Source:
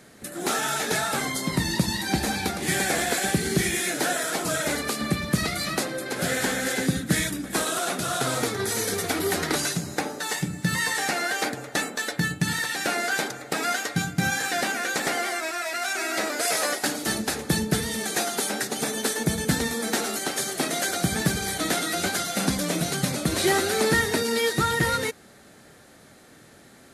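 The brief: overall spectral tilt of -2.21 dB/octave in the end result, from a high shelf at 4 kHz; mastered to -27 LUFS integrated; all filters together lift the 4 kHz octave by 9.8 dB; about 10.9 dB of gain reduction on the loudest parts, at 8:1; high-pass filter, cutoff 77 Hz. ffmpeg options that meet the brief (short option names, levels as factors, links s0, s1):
-af "highpass=77,highshelf=f=4000:g=8.5,equalizer=f=4000:t=o:g=6.5,acompressor=threshold=0.0447:ratio=8,volume=1.19"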